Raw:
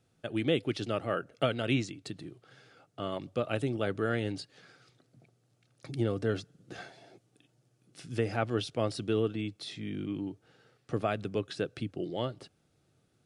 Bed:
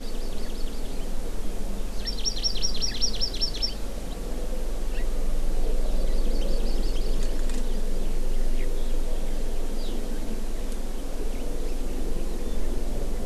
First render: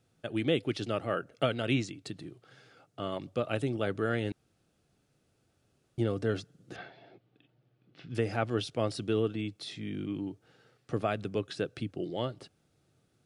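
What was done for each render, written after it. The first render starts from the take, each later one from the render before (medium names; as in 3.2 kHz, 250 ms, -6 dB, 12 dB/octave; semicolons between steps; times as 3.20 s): 4.32–5.98 s: room tone; 6.76–8.15 s: low-pass 3.7 kHz 24 dB/octave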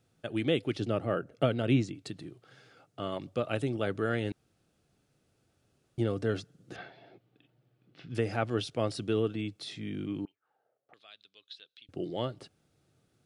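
0.75–1.95 s: tilt shelf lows +4.5 dB, about 790 Hz; 10.25–11.89 s: auto-wah 550–3800 Hz, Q 5.9, up, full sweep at -33.5 dBFS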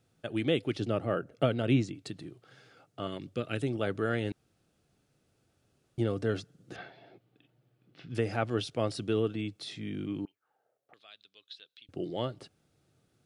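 3.07–3.62 s: high-order bell 800 Hz -8.5 dB 1.3 oct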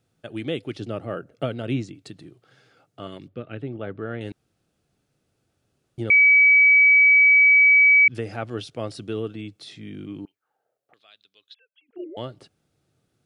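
3.28–4.21 s: distance through air 400 m; 6.10–8.08 s: bleep 2.28 kHz -11 dBFS; 11.54–12.17 s: formants replaced by sine waves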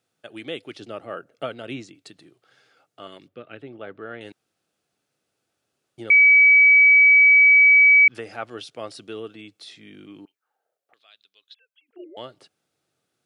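high-pass 610 Hz 6 dB/octave; dynamic bell 1.1 kHz, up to +7 dB, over -35 dBFS, Q 1.1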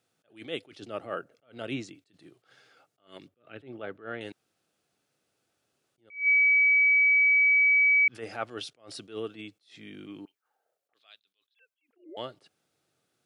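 peak limiter -18 dBFS, peak gain reduction 8.5 dB; attacks held to a fixed rise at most 180 dB/s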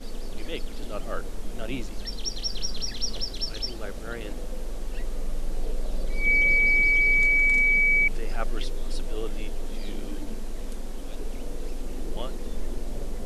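add bed -4 dB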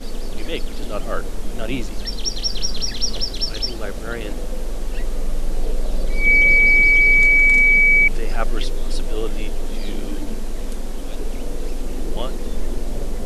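trim +7.5 dB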